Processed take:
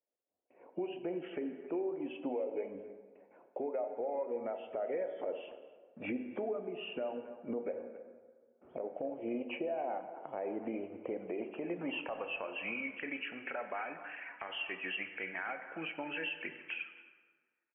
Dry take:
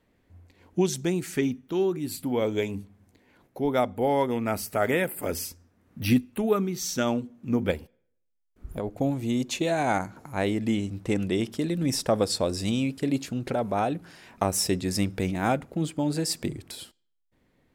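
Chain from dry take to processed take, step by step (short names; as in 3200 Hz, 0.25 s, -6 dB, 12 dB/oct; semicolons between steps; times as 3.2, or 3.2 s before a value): nonlinear frequency compression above 2200 Hz 4:1; band-pass sweep 590 Hz -> 1700 Hz, 11.19–13.04; gate with hold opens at -60 dBFS; HPF 230 Hz 12 dB/oct; compressor 5:1, threshold -40 dBFS, peak gain reduction 16 dB; reverb removal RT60 0.78 s; speakerphone echo 0.27 s, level -19 dB; dynamic EQ 1100 Hz, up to -5 dB, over -56 dBFS, Q 1.3; steep low-pass 2800 Hz 72 dB/oct; plate-style reverb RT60 1.6 s, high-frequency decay 0.6×, DRR 8 dB; limiter -37 dBFS, peak gain reduction 9.5 dB; AGC gain up to 7 dB; gain +1.5 dB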